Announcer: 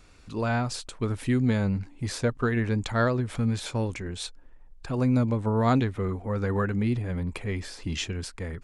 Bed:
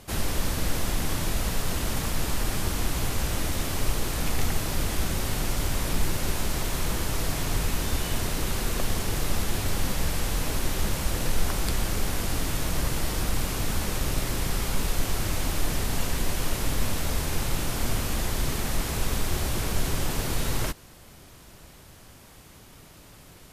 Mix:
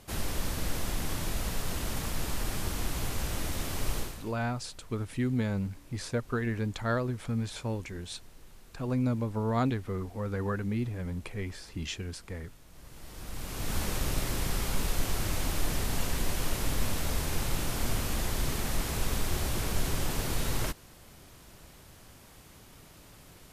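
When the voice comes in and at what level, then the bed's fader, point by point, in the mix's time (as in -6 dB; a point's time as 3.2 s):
3.90 s, -5.5 dB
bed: 4 s -5.5 dB
4.38 s -28 dB
12.66 s -28 dB
13.77 s -3.5 dB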